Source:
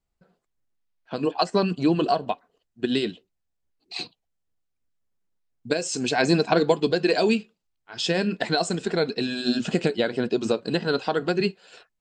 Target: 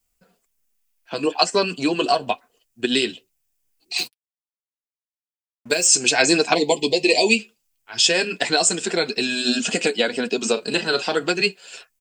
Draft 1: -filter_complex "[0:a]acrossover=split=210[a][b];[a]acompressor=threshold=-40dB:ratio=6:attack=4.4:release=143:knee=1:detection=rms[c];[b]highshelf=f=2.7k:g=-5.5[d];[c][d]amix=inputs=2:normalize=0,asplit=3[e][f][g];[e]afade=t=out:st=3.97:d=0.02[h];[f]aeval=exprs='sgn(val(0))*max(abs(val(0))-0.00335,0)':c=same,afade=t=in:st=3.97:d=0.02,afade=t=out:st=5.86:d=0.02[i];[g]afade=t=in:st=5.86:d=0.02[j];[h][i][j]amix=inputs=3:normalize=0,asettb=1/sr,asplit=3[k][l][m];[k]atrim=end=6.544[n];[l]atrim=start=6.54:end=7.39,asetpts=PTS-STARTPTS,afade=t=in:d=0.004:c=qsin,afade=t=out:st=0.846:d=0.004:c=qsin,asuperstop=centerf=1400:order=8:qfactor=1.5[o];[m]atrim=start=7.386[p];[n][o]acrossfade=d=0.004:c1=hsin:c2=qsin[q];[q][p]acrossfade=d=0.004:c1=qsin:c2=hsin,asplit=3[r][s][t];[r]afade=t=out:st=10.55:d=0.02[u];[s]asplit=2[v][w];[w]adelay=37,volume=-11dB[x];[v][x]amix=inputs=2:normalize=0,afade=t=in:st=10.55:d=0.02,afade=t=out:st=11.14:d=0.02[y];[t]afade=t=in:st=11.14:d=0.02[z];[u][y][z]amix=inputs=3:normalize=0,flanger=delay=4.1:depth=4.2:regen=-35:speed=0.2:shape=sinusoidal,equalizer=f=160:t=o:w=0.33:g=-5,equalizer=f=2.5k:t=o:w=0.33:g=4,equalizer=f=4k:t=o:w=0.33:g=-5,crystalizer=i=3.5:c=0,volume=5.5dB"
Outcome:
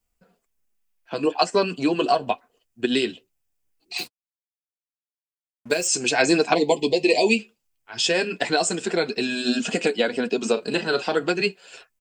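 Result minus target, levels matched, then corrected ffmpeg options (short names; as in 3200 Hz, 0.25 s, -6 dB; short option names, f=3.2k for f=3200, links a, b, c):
4000 Hz band -3.0 dB
-filter_complex "[0:a]acrossover=split=210[a][b];[a]acompressor=threshold=-40dB:ratio=6:attack=4.4:release=143:knee=1:detection=rms[c];[b]highshelf=f=2.7k:g=3[d];[c][d]amix=inputs=2:normalize=0,asplit=3[e][f][g];[e]afade=t=out:st=3.97:d=0.02[h];[f]aeval=exprs='sgn(val(0))*max(abs(val(0))-0.00335,0)':c=same,afade=t=in:st=3.97:d=0.02,afade=t=out:st=5.86:d=0.02[i];[g]afade=t=in:st=5.86:d=0.02[j];[h][i][j]amix=inputs=3:normalize=0,asettb=1/sr,asplit=3[k][l][m];[k]atrim=end=6.544[n];[l]atrim=start=6.54:end=7.39,asetpts=PTS-STARTPTS,afade=t=in:d=0.004:c=qsin,afade=t=out:st=0.846:d=0.004:c=qsin,asuperstop=centerf=1400:order=8:qfactor=1.5[o];[m]atrim=start=7.386[p];[n][o]acrossfade=d=0.004:c1=hsin:c2=qsin[q];[q][p]acrossfade=d=0.004:c1=qsin:c2=hsin,asplit=3[r][s][t];[r]afade=t=out:st=10.55:d=0.02[u];[s]asplit=2[v][w];[w]adelay=37,volume=-11dB[x];[v][x]amix=inputs=2:normalize=0,afade=t=in:st=10.55:d=0.02,afade=t=out:st=11.14:d=0.02[y];[t]afade=t=in:st=11.14:d=0.02[z];[u][y][z]amix=inputs=3:normalize=0,flanger=delay=4.1:depth=4.2:regen=-35:speed=0.2:shape=sinusoidal,equalizer=f=160:t=o:w=0.33:g=-5,equalizer=f=2.5k:t=o:w=0.33:g=4,equalizer=f=4k:t=o:w=0.33:g=-5,crystalizer=i=3.5:c=0,volume=5.5dB"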